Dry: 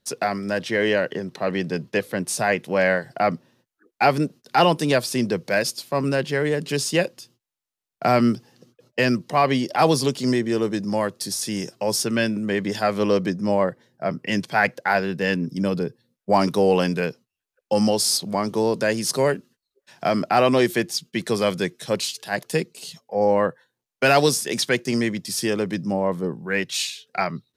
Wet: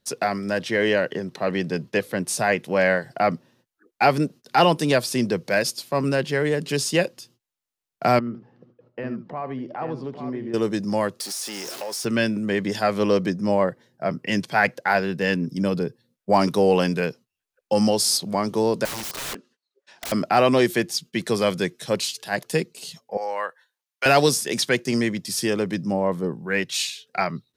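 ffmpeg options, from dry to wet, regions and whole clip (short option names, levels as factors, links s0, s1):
-filter_complex "[0:a]asettb=1/sr,asplit=3[s0][s1][s2];[s0]atrim=end=8.194[s3];[s1]atrim=start=8.19:end=10.54,asetpts=PTS-STARTPTS,afade=t=in:d=0.004:c=qsin,afade=t=out:st=2.346:d=0.004:c=qsin,lowpass=1400,acompressor=threshold=0.0158:ratio=2:attack=3.2:release=140:knee=1:detection=peak,aecho=1:1:75|840:0.224|0.422,atrim=end_sample=103635[s4];[s2]atrim=start=10.536[s5];[s3][s4]acrossfade=d=0.004:c1=hsin:c2=qsin[s6];[s6][s5]acrossfade=d=0.004:c1=qsin:c2=hsin,asettb=1/sr,asplit=3[s7][s8][s9];[s7]atrim=end=11.204[s10];[s8]atrim=start=11.2:end=12.05,asetpts=PTS-STARTPTS,afade=t=in:d=0.004:c=qsin,afade=t=out:st=0.846:d=0.004:c=qsin,aeval=exprs='val(0)+0.5*0.0398*sgn(val(0))':c=same,highpass=450,acompressor=threshold=0.0398:ratio=4:attack=3.2:release=140:knee=1:detection=peak[s11];[s9]atrim=start=12.046[s12];[s10][s11]acrossfade=d=0.004:c1=hsin:c2=qsin[s13];[s13][s12]acrossfade=d=0.004:c1=qsin:c2=hsin,asettb=1/sr,asplit=3[s14][s15][s16];[s14]atrim=end=18.854[s17];[s15]atrim=start=18.85:end=20.12,asetpts=PTS-STARTPTS,afade=t=in:d=0.004:c=qsin,afade=t=out:st=1.266:d=0.004:c=qsin,highpass=310,lowpass=6300,aeval=exprs='(mod(21.1*val(0)+1,2)-1)/21.1':c=same[s18];[s16]atrim=start=20.116[s19];[s17][s18]acrossfade=d=0.004:c1=hsin:c2=qsin[s20];[s20][s19]acrossfade=d=0.004:c1=qsin:c2=hsin,asettb=1/sr,asplit=3[s21][s22][s23];[s21]atrim=end=23.174[s24];[s22]atrim=start=23.17:end=24.06,asetpts=PTS-STARTPTS,afade=t=in:d=0.004:c=qsin,afade=t=out:st=0.886:d=0.004:c=qsin,highpass=1000,equalizer=f=7700:w=5.5:g=-2.5[s25];[s23]atrim=start=24.056[s26];[s24][s25]acrossfade=d=0.004:c1=hsin:c2=qsin[s27];[s27][s26]acrossfade=d=0.004:c1=qsin:c2=hsin"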